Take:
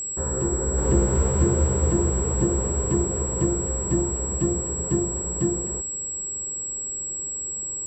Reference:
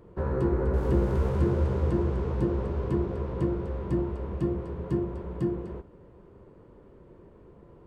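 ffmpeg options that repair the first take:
ffmpeg -i in.wav -af "bandreject=frequency=7700:width=30,asetnsamples=nb_out_samples=441:pad=0,asendcmd='0.78 volume volume -4dB',volume=0dB" out.wav

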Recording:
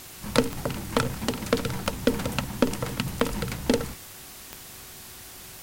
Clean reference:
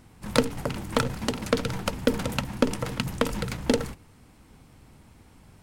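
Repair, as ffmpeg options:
ffmpeg -i in.wav -af "adeclick=threshold=4,bandreject=frequency=373.1:width_type=h:width=4,bandreject=frequency=746.2:width_type=h:width=4,bandreject=frequency=1119.3:width_type=h:width=4,bandreject=frequency=1492.4:width_type=h:width=4,bandreject=frequency=1865.5:width_type=h:width=4,afwtdn=0.0071" out.wav

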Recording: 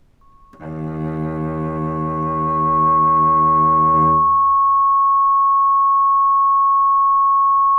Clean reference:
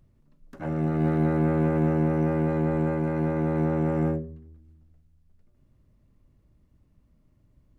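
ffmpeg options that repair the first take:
ffmpeg -i in.wav -af "bandreject=frequency=1100:width=30,agate=range=-21dB:threshold=-19dB,asetnsamples=nb_out_samples=441:pad=0,asendcmd='3.94 volume volume -3dB',volume=0dB" out.wav

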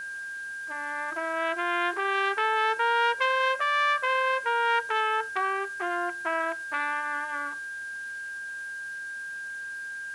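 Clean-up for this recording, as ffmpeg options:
ffmpeg -i in.wav -af "adeclick=threshold=4,bandreject=frequency=1600:width=30,afwtdn=0.0025" out.wav

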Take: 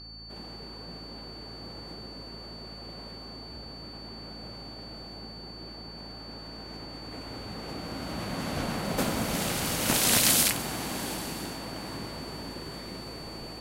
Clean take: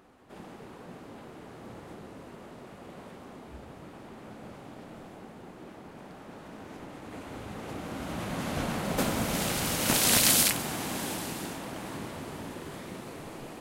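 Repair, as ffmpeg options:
ffmpeg -i in.wav -af "bandreject=frequency=55.4:width_type=h:width=4,bandreject=frequency=110.8:width_type=h:width=4,bandreject=frequency=166.2:width_type=h:width=4,bandreject=frequency=221.6:width_type=h:width=4,bandreject=frequency=277:width_type=h:width=4,bandreject=frequency=4500:width=30" out.wav

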